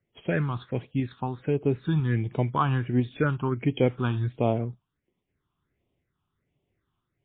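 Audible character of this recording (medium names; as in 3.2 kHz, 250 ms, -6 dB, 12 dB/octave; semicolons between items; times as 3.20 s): tremolo saw up 1 Hz, depth 30%; phasing stages 6, 1.4 Hz, lowest notch 520–1500 Hz; MP3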